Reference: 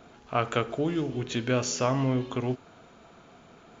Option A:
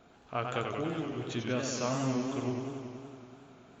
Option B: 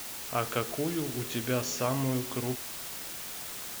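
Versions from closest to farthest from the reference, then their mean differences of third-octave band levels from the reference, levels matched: A, B; 4.5, 12.5 decibels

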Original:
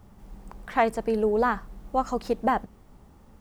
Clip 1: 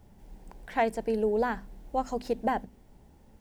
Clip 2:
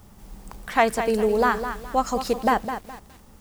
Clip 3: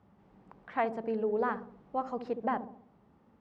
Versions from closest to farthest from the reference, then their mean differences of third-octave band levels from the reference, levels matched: 1, 3, 2; 1.5, 4.5, 6.5 decibels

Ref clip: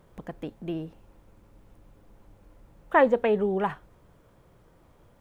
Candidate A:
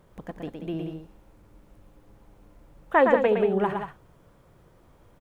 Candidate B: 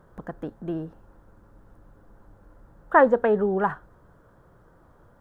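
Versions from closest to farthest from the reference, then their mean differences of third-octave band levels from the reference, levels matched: B, A; 2.0, 3.5 decibels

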